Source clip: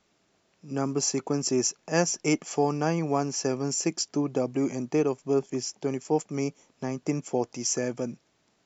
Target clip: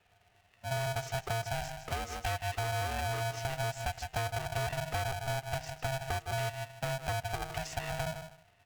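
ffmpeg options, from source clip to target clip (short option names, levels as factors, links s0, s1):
-filter_complex "[0:a]afftfilt=real='re*pow(10,7/40*sin(2*PI*(1.7*log(max(b,1)*sr/1024/100)/log(2)-(-0.99)*(pts-256)/sr)))':imag='im*pow(10,7/40*sin(2*PI*(1.7*log(max(b,1)*sr/1024/100)/log(2)-(-0.99)*(pts-256)/sr)))':win_size=1024:overlap=0.75,lowshelf=f=64:g=-2.5,aecho=1:1:156|312:0.188|0.0339,acontrast=27,alimiter=limit=0.211:level=0:latency=1:release=223,asplit=3[s0][s1][s2];[s0]bandpass=f=300:t=q:w=8,volume=1[s3];[s1]bandpass=f=870:t=q:w=8,volume=0.501[s4];[s2]bandpass=f=2240:t=q:w=8,volume=0.355[s5];[s3][s4][s5]amix=inputs=3:normalize=0,bandreject=f=124.3:t=h:w=4,bandreject=f=248.6:t=h:w=4,bandreject=f=372.9:t=h:w=4,bandreject=f=497.2:t=h:w=4,bandreject=f=621.5:t=h:w=4,bandreject=f=745.8:t=h:w=4,bandreject=f=870.1:t=h:w=4,bandreject=f=994.4:t=h:w=4,bandreject=f=1118.7:t=h:w=4,bandreject=f=1243:t=h:w=4,bandreject=f=1367.3:t=h:w=4,bandreject=f=1491.6:t=h:w=4,bandreject=f=1615.9:t=h:w=4,bandreject=f=1740.2:t=h:w=4,bandreject=f=1864.5:t=h:w=4,bandreject=f=1988.8:t=h:w=4,bandreject=f=2113.1:t=h:w=4,bandreject=f=2237.4:t=h:w=4,bandreject=f=2361.7:t=h:w=4,bandreject=f=2486:t=h:w=4,bandreject=f=2610.3:t=h:w=4,bandreject=f=2734.6:t=h:w=4,bandreject=f=2858.9:t=h:w=4,asoftclip=type=hard:threshold=0.0299,equalizer=f=125:t=o:w=1:g=-5,equalizer=f=1000:t=o:w=1:g=-4,equalizer=f=2000:t=o:w=1:g=8,acompressor=threshold=0.01:ratio=12,aeval=exprs='val(0)*sgn(sin(2*PI*400*n/s))':c=same,volume=2.66"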